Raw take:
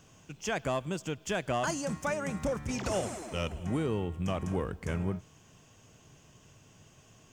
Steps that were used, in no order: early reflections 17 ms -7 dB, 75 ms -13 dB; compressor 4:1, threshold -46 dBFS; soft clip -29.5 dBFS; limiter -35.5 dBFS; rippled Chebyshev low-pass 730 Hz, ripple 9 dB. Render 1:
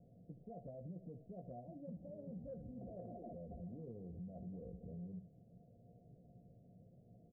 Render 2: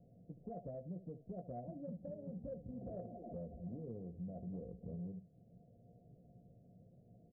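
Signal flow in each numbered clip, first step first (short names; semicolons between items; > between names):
limiter > rippled Chebyshev low-pass > soft clip > early reflections > compressor; rippled Chebyshev low-pass > compressor > early reflections > soft clip > limiter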